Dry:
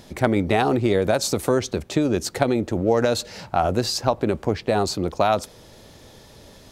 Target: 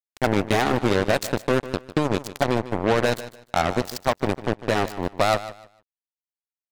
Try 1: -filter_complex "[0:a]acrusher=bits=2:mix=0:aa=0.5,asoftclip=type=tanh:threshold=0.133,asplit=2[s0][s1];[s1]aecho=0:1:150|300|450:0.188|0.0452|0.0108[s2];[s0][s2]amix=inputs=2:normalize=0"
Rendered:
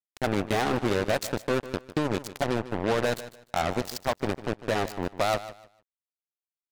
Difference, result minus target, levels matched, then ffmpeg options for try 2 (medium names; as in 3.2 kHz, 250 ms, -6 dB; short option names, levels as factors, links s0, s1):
saturation: distortion +13 dB
-filter_complex "[0:a]acrusher=bits=2:mix=0:aa=0.5,asoftclip=type=tanh:threshold=0.447,asplit=2[s0][s1];[s1]aecho=0:1:150|300|450:0.188|0.0452|0.0108[s2];[s0][s2]amix=inputs=2:normalize=0"